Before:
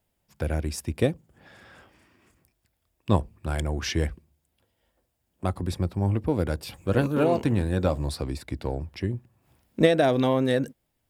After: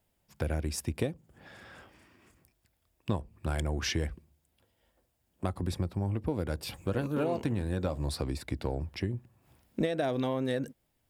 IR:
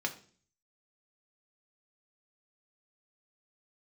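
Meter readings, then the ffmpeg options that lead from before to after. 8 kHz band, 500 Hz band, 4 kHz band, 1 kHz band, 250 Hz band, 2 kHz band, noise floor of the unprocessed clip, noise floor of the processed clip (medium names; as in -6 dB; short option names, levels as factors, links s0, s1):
-2.0 dB, -8.5 dB, -4.5 dB, -8.0 dB, -7.0 dB, -6.5 dB, -76 dBFS, -76 dBFS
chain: -af "acompressor=threshold=0.0398:ratio=4"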